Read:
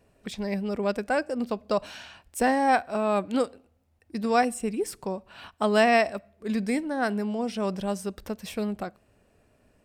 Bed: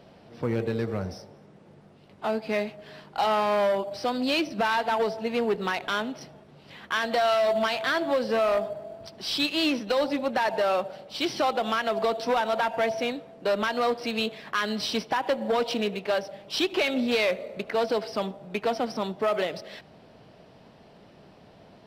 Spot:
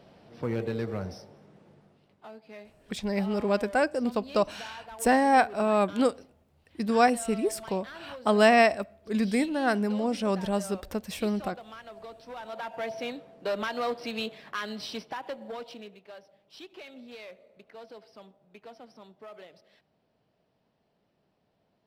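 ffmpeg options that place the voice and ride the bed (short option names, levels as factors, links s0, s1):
-filter_complex "[0:a]adelay=2650,volume=1.12[s0];[1:a]volume=3.55,afade=t=out:st=1.58:d=0.71:silence=0.158489,afade=t=in:st=12.29:d=0.93:silence=0.199526,afade=t=out:st=14.14:d=1.87:silence=0.158489[s1];[s0][s1]amix=inputs=2:normalize=0"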